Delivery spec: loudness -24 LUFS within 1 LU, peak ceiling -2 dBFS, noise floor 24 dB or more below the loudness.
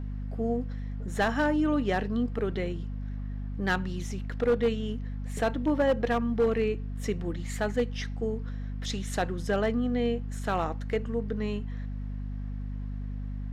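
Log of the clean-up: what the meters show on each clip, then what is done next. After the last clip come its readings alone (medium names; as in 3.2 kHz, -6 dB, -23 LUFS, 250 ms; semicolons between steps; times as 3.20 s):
clipped samples 0.5%; clipping level -18.5 dBFS; hum 50 Hz; highest harmonic 250 Hz; hum level -32 dBFS; loudness -30.5 LUFS; peak level -18.5 dBFS; loudness target -24.0 LUFS
-> clip repair -18.5 dBFS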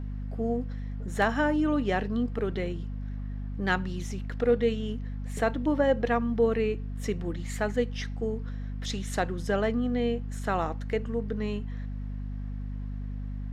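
clipped samples 0.0%; hum 50 Hz; highest harmonic 250 Hz; hum level -32 dBFS
-> de-hum 50 Hz, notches 5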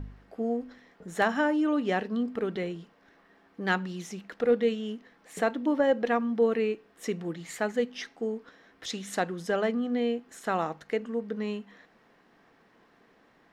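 hum not found; loudness -30.0 LUFS; peak level -10.0 dBFS; loudness target -24.0 LUFS
-> trim +6 dB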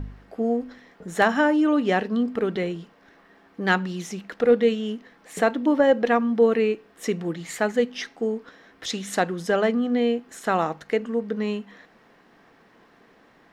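loudness -24.0 LUFS; peak level -4.0 dBFS; noise floor -57 dBFS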